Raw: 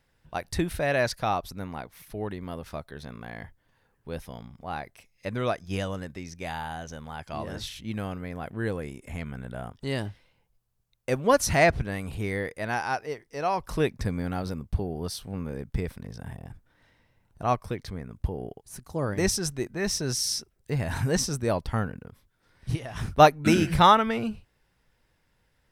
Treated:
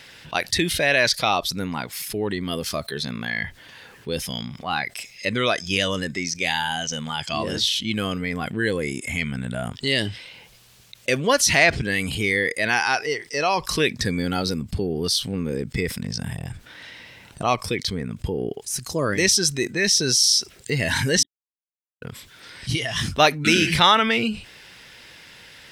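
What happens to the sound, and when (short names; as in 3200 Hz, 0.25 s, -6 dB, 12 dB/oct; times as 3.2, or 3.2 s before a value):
2.52–2.98 high shelf 7700 Hz +6.5 dB
21.23–22.02 mute
whole clip: weighting filter D; spectral noise reduction 10 dB; fast leveller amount 50%; gain -2.5 dB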